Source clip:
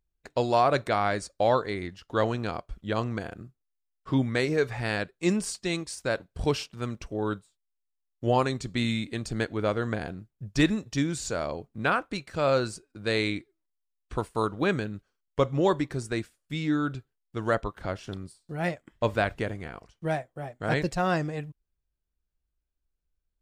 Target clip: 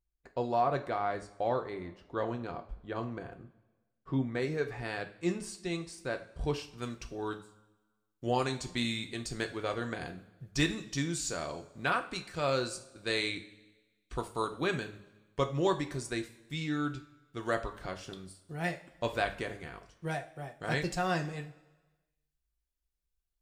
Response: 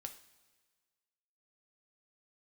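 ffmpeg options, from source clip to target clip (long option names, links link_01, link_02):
-filter_complex "[0:a]asetnsamples=nb_out_samples=441:pad=0,asendcmd='4.42 highshelf g -3.5;6.78 highshelf g 7.5',highshelf=frequency=2400:gain=-10.5[link_01];[1:a]atrim=start_sample=2205,asetrate=57330,aresample=44100[link_02];[link_01][link_02]afir=irnorm=-1:irlink=0"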